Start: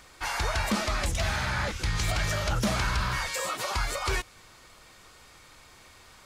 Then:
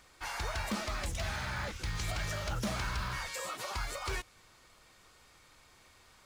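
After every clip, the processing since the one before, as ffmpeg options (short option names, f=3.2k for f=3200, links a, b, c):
-af "acrusher=bits=7:mode=log:mix=0:aa=0.000001,volume=-8dB"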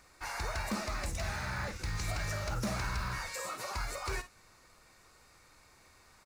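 -af "equalizer=f=3.2k:t=o:w=0.28:g=-11,aecho=1:1:49|59:0.211|0.158"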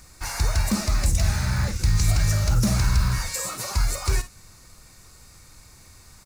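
-af "bass=f=250:g=13,treble=f=4k:g=11,volume=4.5dB"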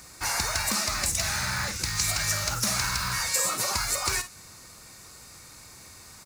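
-filter_complex "[0:a]highpass=f=200:p=1,acrossover=split=820[a][b];[a]acompressor=threshold=-38dB:ratio=6[c];[c][b]amix=inputs=2:normalize=0,volume=4dB"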